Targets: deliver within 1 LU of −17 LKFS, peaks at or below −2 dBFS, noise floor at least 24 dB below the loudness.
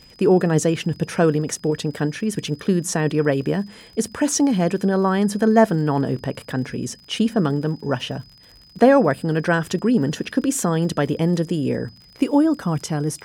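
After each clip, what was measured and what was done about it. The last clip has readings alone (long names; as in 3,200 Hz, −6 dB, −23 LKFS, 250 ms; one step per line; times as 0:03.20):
crackle rate 52 per second; interfering tone 5,000 Hz; level of the tone −48 dBFS; integrated loudness −21.0 LKFS; sample peak −2.5 dBFS; target loudness −17.0 LKFS
→ click removal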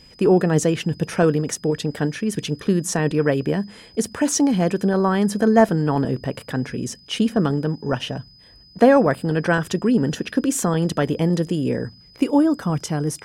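crackle rate 0.23 per second; interfering tone 5,000 Hz; level of the tone −48 dBFS
→ notch filter 5,000 Hz, Q 30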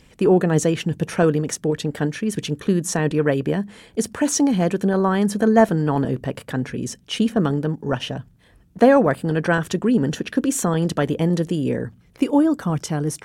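interfering tone none found; integrated loudness −21.0 LKFS; sample peak −2.5 dBFS; target loudness −17.0 LKFS
→ level +4 dB
brickwall limiter −2 dBFS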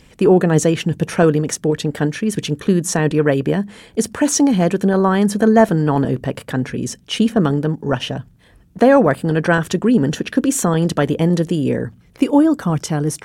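integrated loudness −17.0 LKFS; sample peak −2.0 dBFS; background noise floor −50 dBFS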